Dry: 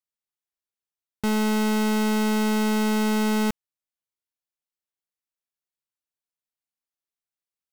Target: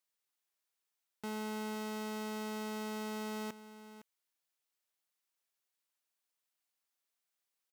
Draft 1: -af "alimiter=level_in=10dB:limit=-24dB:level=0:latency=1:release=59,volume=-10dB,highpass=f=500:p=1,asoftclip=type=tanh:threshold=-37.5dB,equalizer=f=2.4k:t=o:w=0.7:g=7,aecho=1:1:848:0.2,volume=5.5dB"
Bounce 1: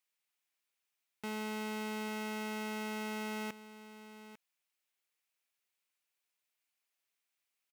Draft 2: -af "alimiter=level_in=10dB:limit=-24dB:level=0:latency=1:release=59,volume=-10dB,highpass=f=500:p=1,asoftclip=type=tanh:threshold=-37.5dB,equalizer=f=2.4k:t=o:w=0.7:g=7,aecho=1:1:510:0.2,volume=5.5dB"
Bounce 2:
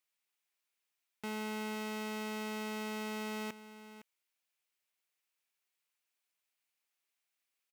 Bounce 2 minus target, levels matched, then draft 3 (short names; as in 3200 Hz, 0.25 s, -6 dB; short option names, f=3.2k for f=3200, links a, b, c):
2000 Hz band +3.0 dB
-af "alimiter=level_in=10dB:limit=-24dB:level=0:latency=1:release=59,volume=-10dB,highpass=f=500:p=1,asoftclip=type=tanh:threshold=-37.5dB,aecho=1:1:510:0.2,volume=5.5dB"